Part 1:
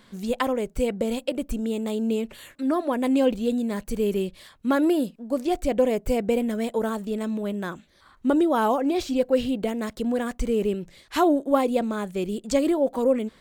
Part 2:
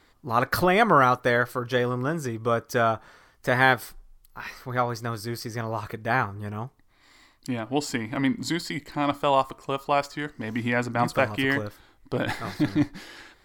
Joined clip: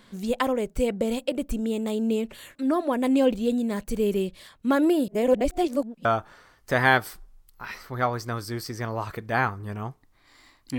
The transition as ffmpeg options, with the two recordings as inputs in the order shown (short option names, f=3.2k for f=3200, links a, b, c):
-filter_complex "[0:a]apad=whole_dur=10.78,atrim=end=10.78,asplit=2[a][b];[a]atrim=end=5.082[c];[b]atrim=start=5.078:end=6.052,asetpts=PTS-STARTPTS,areverse[d];[1:a]atrim=start=2.808:end=7.54[e];[c][d]acrossfade=d=0.004:c1=hsin:c2=hsin[f];[f][e]acrossfade=d=0.004:c1=hsin:c2=hsin"